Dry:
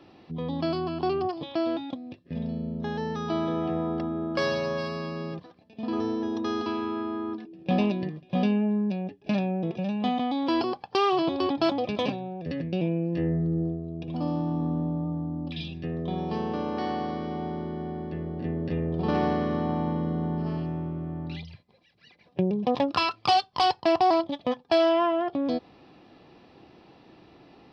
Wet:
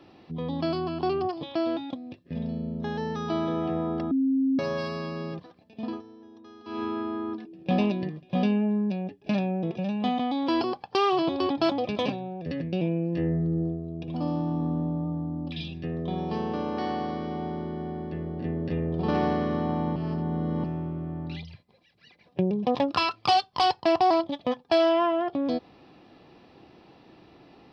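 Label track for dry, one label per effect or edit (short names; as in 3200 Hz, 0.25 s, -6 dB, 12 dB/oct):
4.110000	4.590000	bleep 267 Hz -20.5 dBFS
5.840000	6.820000	dip -20 dB, fades 0.18 s
19.960000	20.640000	reverse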